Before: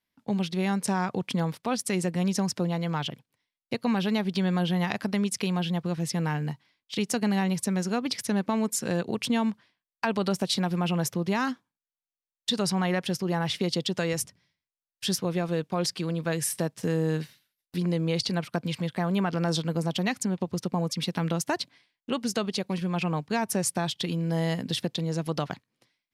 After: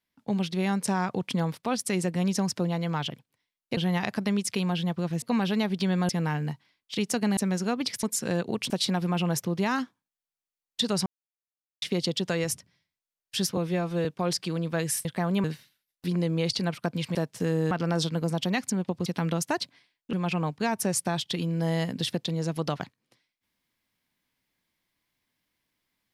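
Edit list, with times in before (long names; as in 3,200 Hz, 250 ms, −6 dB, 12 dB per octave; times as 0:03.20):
0:03.77–0:04.64: move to 0:06.09
0:07.37–0:07.62: remove
0:08.28–0:08.63: remove
0:09.30–0:10.39: remove
0:12.75–0:13.51: silence
0:15.26–0:15.58: time-stretch 1.5×
0:16.58–0:17.14: swap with 0:18.85–0:19.24
0:20.59–0:21.05: remove
0:22.12–0:22.83: remove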